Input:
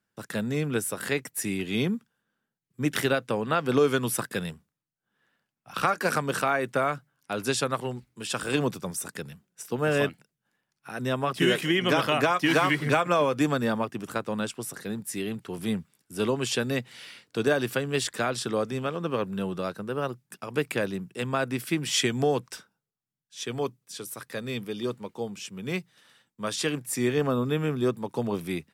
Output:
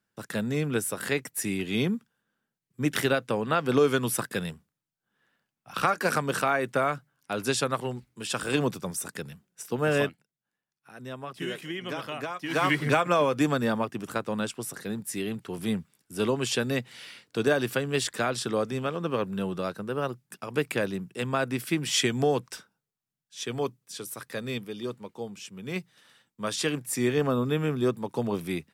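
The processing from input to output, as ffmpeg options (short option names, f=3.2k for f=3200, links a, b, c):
-filter_complex "[0:a]asplit=5[a][b][c][d][e];[a]atrim=end=10.17,asetpts=PTS-STARTPTS,afade=t=out:st=10:d=0.17:silence=0.281838[f];[b]atrim=start=10.17:end=12.49,asetpts=PTS-STARTPTS,volume=-11dB[g];[c]atrim=start=12.49:end=24.582,asetpts=PTS-STARTPTS,afade=t=in:d=0.17:silence=0.281838[h];[d]atrim=start=24.578:end=25.762,asetpts=PTS-STARTPTS,volume=-3.5dB[i];[e]atrim=start=25.758[j];[f][g][h]concat=n=3:v=0:a=1[k];[k][i]acrossfade=d=0.004:c1=hsin:c2=hsin[l];[l][j]acrossfade=d=0.004:c1=hsin:c2=hsin"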